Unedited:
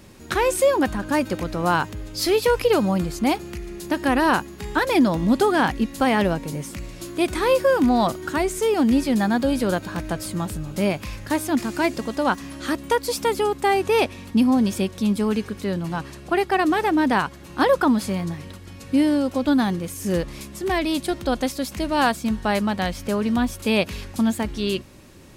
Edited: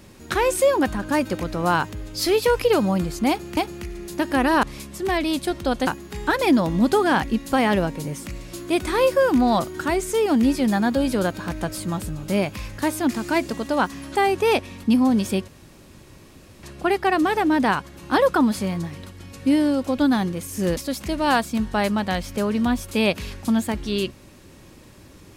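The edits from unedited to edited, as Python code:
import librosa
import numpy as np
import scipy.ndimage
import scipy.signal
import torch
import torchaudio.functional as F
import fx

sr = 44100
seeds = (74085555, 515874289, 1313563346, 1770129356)

y = fx.edit(x, sr, fx.repeat(start_s=3.29, length_s=0.28, count=2),
    fx.cut(start_s=12.63, length_s=0.99),
    fx.room_tone_fill(start_s=14.95, length_s=1.15),
    fx.move(start_s=20.24, length_s=1.24, to_s=4.35), tone=tone)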